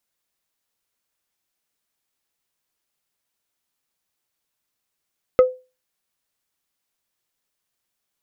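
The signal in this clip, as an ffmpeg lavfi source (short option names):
-f lavfi -i "aevalsrc='0.531*pow(10,-3*t/0.29)*sin(2*PI*509*t)+0.15*pow(10,-3*t/0.097)*sin(2*PI*1272.5*t)+0.0422*pow(10,-3*t/0.055)*sin(2*PI*2036*t)+0.0119*pow(10,-3*t/0.042)*sin(2*PI*2545*t)+0.00335*pow(10,-3*t/0.031)*sin(2*PI*3308.5*t)':d=0.45:s=44100"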